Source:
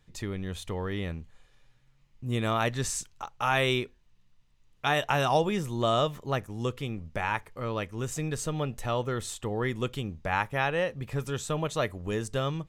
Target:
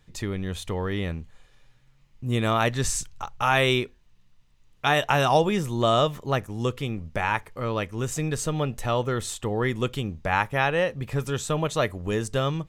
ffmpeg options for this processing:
-filter_complex "[0:a]asplit=3[a][b][c];[a]afade=t=out:st=2.84:d=0.02[d];[b]asubboost=boost=3:cutoff=170,afade=t=in:st=2.84:d=0.02,afade=t=out:st=3.42:d=0.02[e];[c]afade=t=in:st=3.42:d=0.02[f];[d][e][f]amix=inputs=3:normalize=0,volume=4.5dB"

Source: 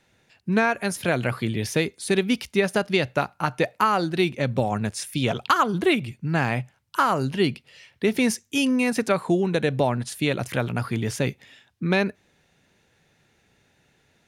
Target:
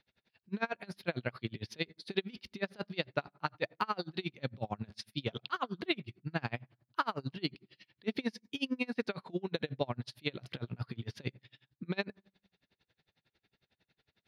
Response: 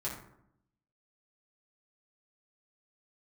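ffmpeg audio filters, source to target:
-filter_complex "[0:a]highshelf=f=5.8k:t=q:w=3:g=-10.5,asplit=2[a][b];[1:a]atrim=start_sample=2205[c];[b][c]afir=irnorm=-1:irlink=0,volume=-22.5dB[d];[a][d]amix=inputs=2:normalize=0,aeval=exprs='val(0)*pow(10,-32*(0.5-0.5*cos(2*PI*11*n/s))/20)':c=same,volume=-8.5dB"

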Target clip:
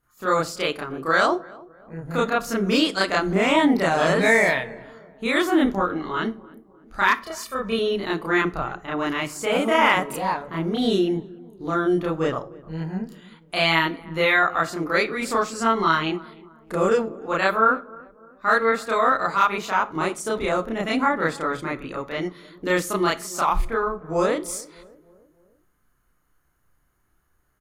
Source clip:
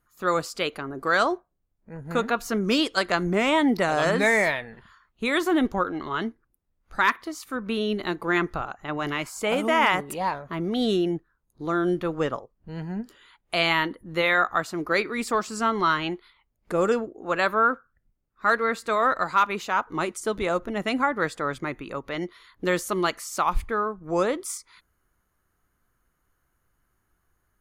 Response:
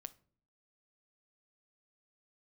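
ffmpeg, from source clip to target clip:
-filter_complex "[0:a]asettb=1/sr,asplit=3[a][b][c];[a]atrim=end=7.194[d];[b]atrim=start=7.19:end=7.76,asetpts=PTS-STARTPTS,afade=t=in:d=0.004:c=qsin,afade=t=out:st=0.566:d=0.004:c=qsin,aecho=1:1:1.7:0.99,atrim=end_sample=25137[e];[c]atrim=start=7.756[f];[d][e]acrossfade=d=0.004:c1=hsin:c2=qsin[g];[g][f]acrossfade=d=0.004:c1=qsin:c2=hsin,asplit=2[h][i];[i]adelay=303,lowpass=f=980:p=1,volume=-20.5dB,asplit=2[j][k];[k]adelay=303,lowpass=f=980:p=1,volume=0.55,asplit=2[l][m];[m]adelay=303,lowpass=f=980:p=1,volume=0.55,asplit=2[n][o];[o]adelay=303,lowpass=f=980:p=1,volume=0.55[p];[h][j][l][n][p]amix=inputs=5:normalize=0,asplit=2[q][r];[1:a]atrim=start_sample=2205,adelay=31[s];[r][s]afir=irnorm=-1:irlink=0,volume=9dB[t];[q][t]amix=inputs=2:normalize=0,volume=-2.5dB"

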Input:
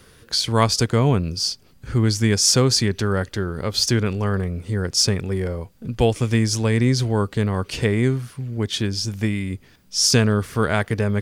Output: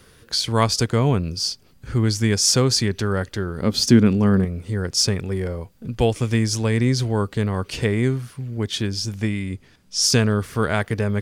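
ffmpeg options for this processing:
-filter_complex "[0:a]asettb=1/sr,asplit=3[a][b][c];[a]atrim=end=3.624[d];[b]atrim=start=3.62:end=4.45,asetpts=PTS-STARTPTS,afade=t=in:d=0.004:c=qsin,afade=t=out:st=0.826:d=0.004:c=qsin,equalizer=f=230:w=1.2:g=12.5[e];[c]atrim=start=4.446[f];[d][e]acrossfade=d=0.004:c1=hsin:c2=qsin[g];[g][f]acrossfade=d=0.004:c1=qsin:c2=hsin,asettb=1/sr,asplit=3[h][i][j];[h]atrim=end=9.154[k];[i]atrim=start=9.15:end=10.02,asetpts=PTS-STARTPTS,afade=t=in:d=0.004:c=qsin,afade=t=out:st=0.866:d=0.004:c=qsin,lowpass=11k[l];[j]atrim=start=10.016[m];[k][l]acrossfade=d=0.004:c1=hsin:c2=qsin[n];[n][m]acrossfade=d=0.004:c1=qsin:c2=hsin,volume=-1dB"

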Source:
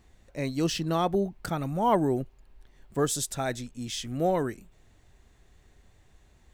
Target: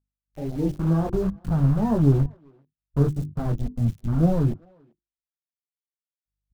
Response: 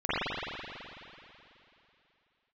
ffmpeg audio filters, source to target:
-filter_complex "[0:a]asplit=2[a][b];[b]acrusher=bits=3:mode=log:mix=0:aa=0.000001,volume=-7.5dB[c];[a][c]amix=inputs=2:normalize=0,flanger=delay=17.5:depth=4.8:speed=2.1,acrossover=split=540[d][e];[e]acompressor=threshold=-45dB:ratio=5[f];[d][f]amix=inputs=2:normalize=0,acrusher=bits=5:mix=0:aa=0.000001,aeval=exprs='val(0)+0.00224*(sin(2*PI*50*n/s)+sin(2*PI*2*50*n/s)/2+sin(2*PI*3*50*n/s)/3+sin(2*PI*4*50*n/s)/4+sin(2*PI*5*50*n/s)/5)':c=same,dynaudnorm=f=250:g=3:m=11dB,bandreject=f=50:t=h:w=6,bandreject=f=100:t=h:w=6,bandreject=f=150:t=h:w=6,bandreject=f=200:t=h:w=6,bandreject=f=250:t=h:w=6,bandreject=f=300:t=h:w=6,bandreject=f=350:t=h:w=6,afwtdn=0.0501,asplit=2[g][h];[h]adelay=390,highpass=300,lowpass=3.4k,asoftclip=type=hard:threshold=-14dB,volume=-27dB[i];[g][i]amix=inputs=2:normalize=0,asubboost=boost=10:cutoff=150,volume=-6dB"

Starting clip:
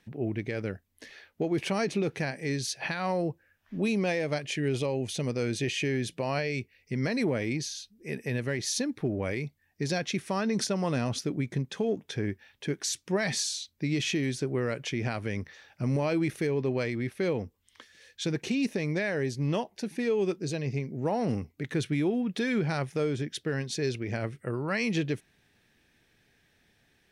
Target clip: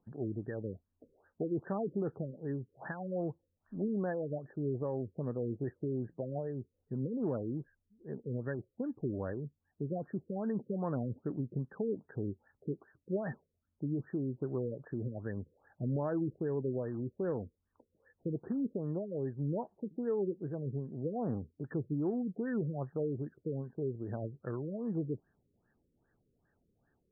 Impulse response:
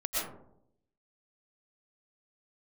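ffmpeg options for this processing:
-filter_complex "[0:a]asettb=1/sr,asplit=3[a][b][c];[a]atrim=end=16.764[d];[b]atrim=start=16.76:end=18.69,asetpts=PTS-STARTPTS,afade=t=in:d=0.004:c=qsin,afade=t=out:st=1.926:d=0.004:c=qsin,acrusher=bits=4:mode=log:mix=0:aa=0.000001[e];[c]atrim=start=18.686[f];[d][e]acrossfade=d=0.004:c1=hsin:c2=qsin[g];[g][f]acrossfade=d=0.004:c1=qsin:c2=hsin,afftfilt=real='re*lt(b*sr/1024,530*pow(1900/530,0.5+0.5*sin(2*PI*2.5*pts/sr)))':imag='im*lt(b*sr/1024,530*pow(1900/530,0.5+0.5*sin(2*PI*2.5*pts/sr)))':win_size=1024:overlap=0.75,volume=-6dB"

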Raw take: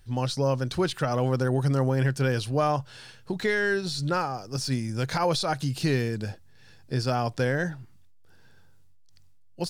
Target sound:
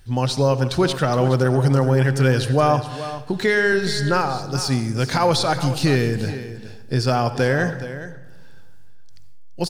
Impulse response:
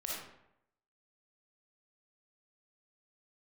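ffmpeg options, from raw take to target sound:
-filter_complex "[0:a]aecho=1:1:421:0.224,asplit=2[a][b];[1:a]atrim=start_sample=2205,asetrate=28665,aresample=44100[c];[b][c]afir=irnorm=-1:irlink=0,volume=-14.5dB[d];[a][d]amix=inputs=2:normalize=0,volume=5.5dB"

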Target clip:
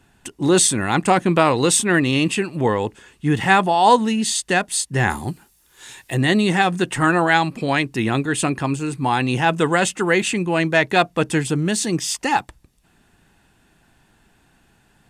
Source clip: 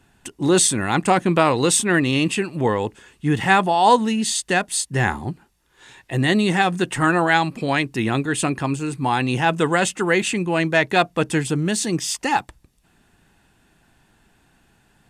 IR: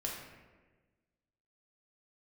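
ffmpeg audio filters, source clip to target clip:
-filter_complex "[0:a]asplit=3[a][b][c];[a]afade=t=out:st=5.09:d=0.02[d];[b]aemphasis=mode=production:type=75kf,afade=t=in:st=5.09:d=0.02,afade=t=out:st=6.13:d=0.02[e];[c]afade=t=in:st=6.13:d=0.02[f];[d][e][f]amix=inputs=3:normalize=0,volume=1dB"

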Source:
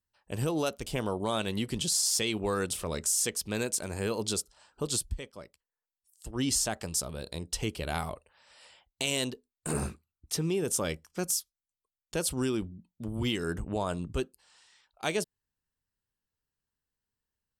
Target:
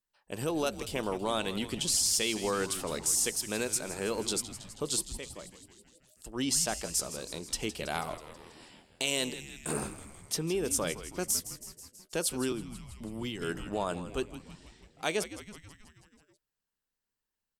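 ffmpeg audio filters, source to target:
-filter_complex "[0:a]equalizer=f=80:t=o:w=1.5:g=-14.5,asplit=8[a][b][c][d][e][f][g][h];[b]adelay=162,afreqshift=-110,volume=-13dB[i];[c]adelay=324,afreqshift=-220,volume=-16.9dB[j];[d]adelay=486,afreqshift=-330,volume=-20.8dB[k];[e]adelay=648,afreqshift=-440,volume=-24.6dB[l];[f]adelay=810,afreqshift=-550,volume=-28.5dB[m];[g]adelay=972,afreqshift=-660,volume=-32.4dB[n];[h]adelay=1134,afreqshift=-770,volume=-36.3dB[o];[a][i][j][k][l][m][n][o]amix=inputs=8:normalize=0,asettb=1/sr,asplit=3[p][q][r];[p]atrim=end=12.524[s];[q]atrim=start=12.52:end=13.42,asetpts=PTS-STARTPTS,afade=t=in:d=0.004:c=qsin,afade=t=out:st=0.896:d=0.004:c=qsin,acrossover=split=190[t][u];[u]acompressor=threshold=-36dB:ratio=10[v];[t][v]amix=inputs=2:normalize=0[w];[r]atrim=start=13.416[x];[s][w]acrossfade=d=0.004:c1=hsin:c2=qsin[y];[y][x]acrossfade=d=0.004:c1=qsin:c2=hsin"

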